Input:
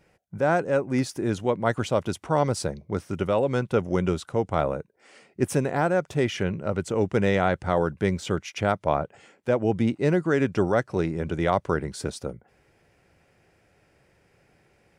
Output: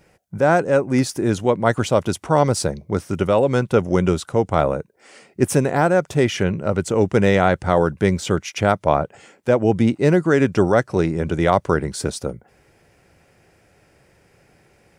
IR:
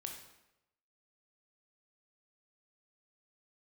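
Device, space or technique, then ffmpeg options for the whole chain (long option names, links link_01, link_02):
exciter from parts: -filter_complex "[0:a]asplit=2[link_01][link_02];[link_02]highpass=4200,asoftclip=type=tanh:threshold=-31dB,volume=-6dB[link_03];[link_01][link_03]amix=inputs=2:normalize=0,volume=6.5dB"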